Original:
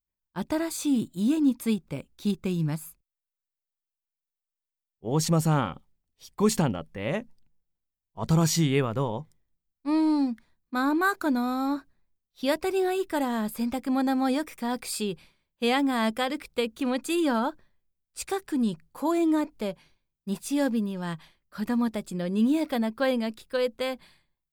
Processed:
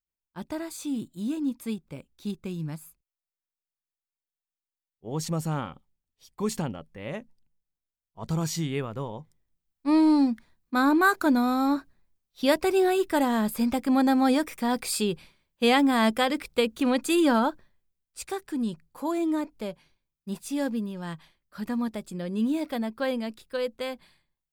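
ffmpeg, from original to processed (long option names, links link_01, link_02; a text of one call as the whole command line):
ffmpeg -i in.wav -af "volume=3.5dB,afade=type=in:start_time=9.17:duration=0.7:silence=0.334965,afade=type=out:start_time=17.36:duration=0.85:silence=0.473151" out.wav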